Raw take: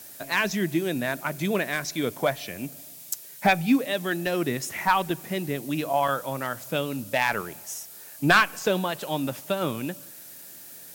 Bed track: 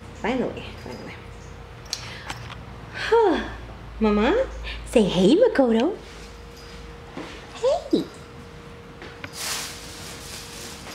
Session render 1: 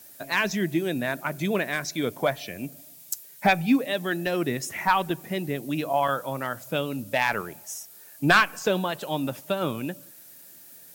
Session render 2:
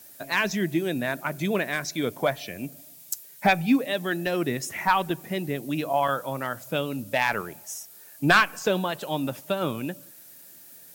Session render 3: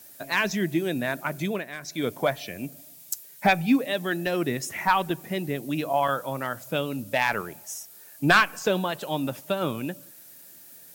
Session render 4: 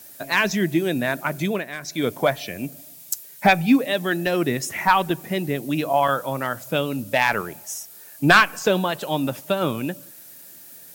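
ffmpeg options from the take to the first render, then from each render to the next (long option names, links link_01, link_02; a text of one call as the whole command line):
ffmpeg -i in.wav -af "afftdn=noise_reduction=6:noise_floor=-45" out.wav
ffmpeg -i in.wav -af anull out.wav
ffmpeg -i in.wav -filter_complex "[0:a]asplit=3[link_01][link_02][link_03];[link_01]atrim=end=1.65,asetpts=PTS-STARTPTS,afade=type=out:start_time=1.4:duration=0.25:silence=0.354813[link_04];[link_02]atrim=start=1.65:end=1.8,asetpts=PTS-STARTPTS,volume=-9dB[link_05];[link_03]atrim=start=1.8,asetpts=PTS-STARTPTS,afade=type=in:duration=0.25:silence=0.354813[link_06];[link_04][link_05][link_06]concat=n=3:v=0:a=1" out.wav
ffmpeg -i in.wav -af "volume=4.5dB" out.wav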